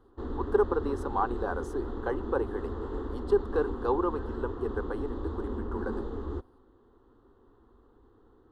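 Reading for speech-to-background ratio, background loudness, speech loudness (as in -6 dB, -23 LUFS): 5.0 dB, -37.5 LUFS, -32.5 LUFS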